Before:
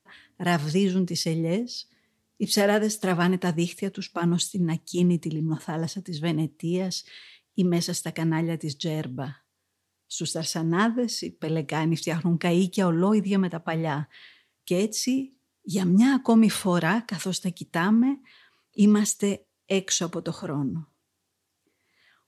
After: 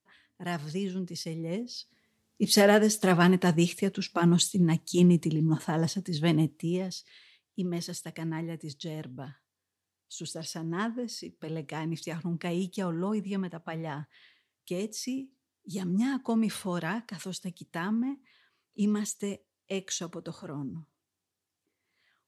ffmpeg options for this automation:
-af "volume=1dB,afade=t=in:st=1.38:d=1.25:silence=0.281838,afade=t=out:st=6.42:d=0.54:silence=0.316228"

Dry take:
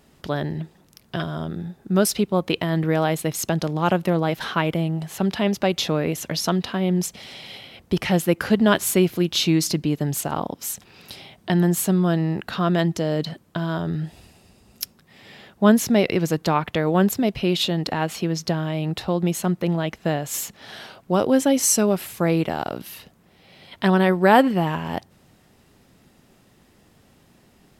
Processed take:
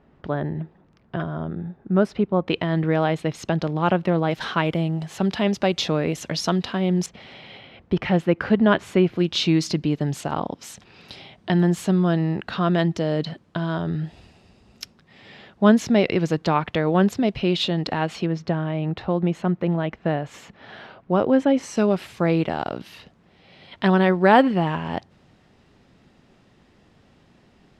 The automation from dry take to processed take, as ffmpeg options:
-af "asetnsamples=n=441:p=0,asendcmd='2.48 lowpass f 3500;4.31 lowpass f 6600;7.06 lowpass f 2500;9.19 lowpass f 4700;18.26 lowpass f 2300;21.77 lowpass f 4600',lowpass=1.7k"

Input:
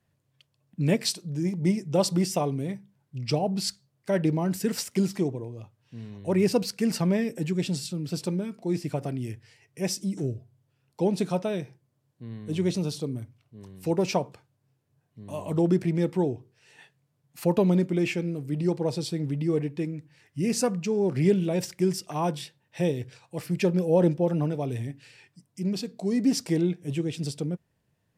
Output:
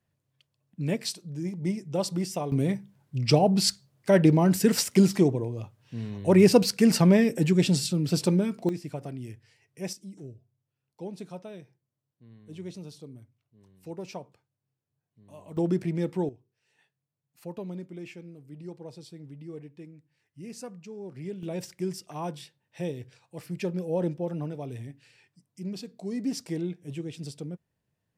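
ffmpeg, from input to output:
-af "asetnsamples=n=441:p=0,asendcmd='2.52 volume volume 5.5dB;8.69 volume volume -6dB;9.93 volume volume -13.5dB;15.57 volume volume -3.5dB;16.29 volume volume -15.5dB;21.43 volume volume -7dB',volume=-5dB"

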